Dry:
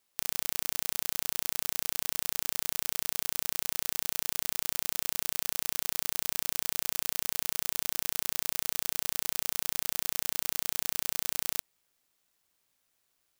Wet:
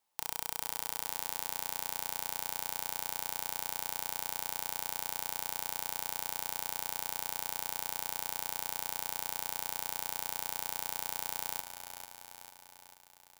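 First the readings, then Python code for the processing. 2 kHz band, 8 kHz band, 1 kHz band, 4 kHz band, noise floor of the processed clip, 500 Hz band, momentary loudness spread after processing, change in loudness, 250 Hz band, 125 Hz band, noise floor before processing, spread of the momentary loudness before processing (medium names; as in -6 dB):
-4.0 dB, -5.5 dB, +3.5 dB, -5.0 dB, -59 dBFS, -3.0 dB, 3 LU, -5.0 dB, -6.0 dB, -5.0 dB, -76 dBFS, 0 LU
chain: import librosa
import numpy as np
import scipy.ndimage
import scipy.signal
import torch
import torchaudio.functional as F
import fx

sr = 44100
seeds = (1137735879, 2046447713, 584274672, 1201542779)

p1 = fx.peak_eq(x, sr, hz=870.0, db=14.5, octaves=0.45)
p2 = p1 + fx.echo_feedback(p1, sr, ms=444, feedback_pct=58, wet_db=-10, dry=0)
p3 = fx.rev_fdn(p2, sr, rt60_s=1.2, lf_ratio=1.0, hf_ratio=0.75, size_ms=19.0, drr_db=17.5)
y = F.gain(torch.from_numpy(p3), -6.0).numpy()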